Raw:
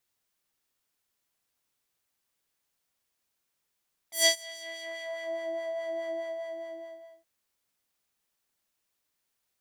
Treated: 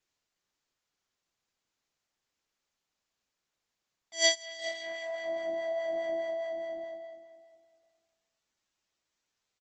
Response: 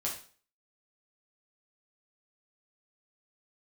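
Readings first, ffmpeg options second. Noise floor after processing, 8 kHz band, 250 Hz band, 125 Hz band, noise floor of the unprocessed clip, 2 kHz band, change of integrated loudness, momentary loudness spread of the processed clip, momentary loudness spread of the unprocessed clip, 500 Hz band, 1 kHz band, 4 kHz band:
under -85 dBFS, -2.5 dB, 0.0 dB, n/a, -81 dBFS, 0.0 dB, -0.5 dB, 17 LU, 17 LU, +1.5 dB, +1.5 dB, -1.0 dB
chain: -filter_complex "[0:a]asplit=2[a][b];[b]adelay=408,lowpass=f=4.5k:p=1,volume=-14dB,asplit=2[c][d];[d]adelay=408,lowpass=f=4.5k:p=1,volume=0.24,asplit=2[e][f];[f]adelay=408,lowpass=f=4.5k:p=1,volume=0.24[g];[c][e][g]amix=inputs=3:normalize=0[h];[a][h]amix=inputs=2:normalize=0,aresample=16000,aresample=44100" -ar 48000 -c:a libopus -b:a 16k

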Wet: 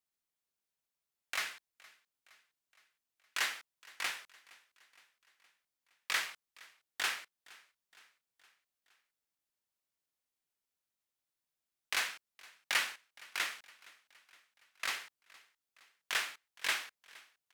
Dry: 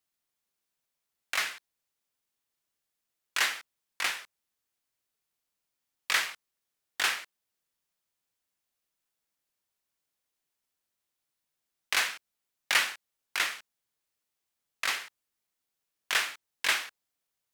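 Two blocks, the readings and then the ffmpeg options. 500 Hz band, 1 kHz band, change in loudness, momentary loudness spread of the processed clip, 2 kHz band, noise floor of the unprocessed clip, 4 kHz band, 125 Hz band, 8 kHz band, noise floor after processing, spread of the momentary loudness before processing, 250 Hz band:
-6.5 dB, -6.5 dB, -6.5 dB, 17 LU, -6.5 dB, -85 dBFS, -6.5 dB, n/a, -6.5 dB, under -85 dBFS, 17 LU, -6.5 dB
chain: -af "aecho=1:1:466|932|1398|1864:0.0708|0.0404|0.023|0.0131,volume=-6.5dB"

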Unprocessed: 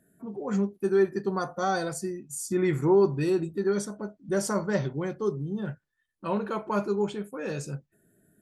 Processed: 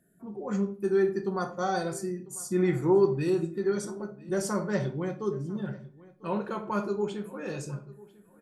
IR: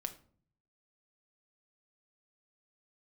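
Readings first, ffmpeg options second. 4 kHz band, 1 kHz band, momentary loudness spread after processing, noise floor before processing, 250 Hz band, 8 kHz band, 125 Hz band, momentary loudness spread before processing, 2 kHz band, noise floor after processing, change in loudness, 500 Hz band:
-2.5 dB, -2.0 dB, 14 LU, -78 dBFS, -1.0 dB, -2.5 dB, -1.0 dB, 13 LU, -2.5 dB, -59 dBFS, -1.5 dB, -1.5 dB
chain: -filter_complex "[0:a]asplit=2[a][b];[b]adelay=996,lowpass=f=3.7k:p=1,volume=-21dB,asplit=2[c][d];[d]adelay=996,lowpass=f=3.7k:p=1,volume=0.21[e];[a][c][e]amix=inputs=3:normalize=0[f];[1:a]atrim=start_sample=2205,afade=t=out:st=0.33:d=0.01,atrim=end_sample=14994[g];[f][g]afir=irnorm=-1:irlink=0,volume=-1dB"

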